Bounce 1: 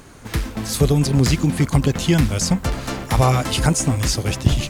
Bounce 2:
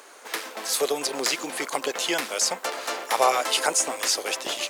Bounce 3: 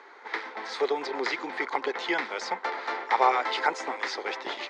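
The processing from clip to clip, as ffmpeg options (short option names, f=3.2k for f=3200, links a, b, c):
-af "highpass=f=450:w=0.5412,highpass=f=450:w=1.3066"
-af "highpass=f=170:w=0.5412,highpass=f=170:w=1.3066,equalizer=f=390:t=q:w=4:g=6,equalizer=f=610:t=q:w=4:g=-5,equalizer=f=880:t=q:w=4:g=9,equalizer=f=1.4k:t=q:w=4:g=3,equalizer=f=2k:t=q:w=4:g=9,equalizer=f=2.8k:t=q:w=4:g=-8,lowpass=f=4.1k:w=0.5412,lowpass=f=4.1k:w=1.3066,volume=-4.5dB"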